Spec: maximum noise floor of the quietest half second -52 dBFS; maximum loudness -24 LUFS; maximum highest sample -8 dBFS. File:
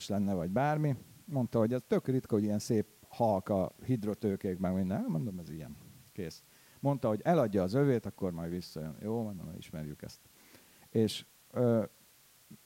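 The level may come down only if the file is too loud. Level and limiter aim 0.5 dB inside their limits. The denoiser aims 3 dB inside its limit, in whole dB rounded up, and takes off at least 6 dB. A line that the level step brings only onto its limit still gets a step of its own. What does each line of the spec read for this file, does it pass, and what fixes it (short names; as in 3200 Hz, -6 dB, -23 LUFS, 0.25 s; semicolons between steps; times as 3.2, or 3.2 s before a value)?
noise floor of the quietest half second -63 dBFS: OK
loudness -33.5 LUFS: OK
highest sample -17.0 dBFS: OK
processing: none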